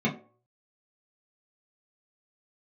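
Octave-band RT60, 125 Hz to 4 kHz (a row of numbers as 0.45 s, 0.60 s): 0.50 s, 0.35 s, 0.45 s, 0.45 s, 0.25 s, 0.20 s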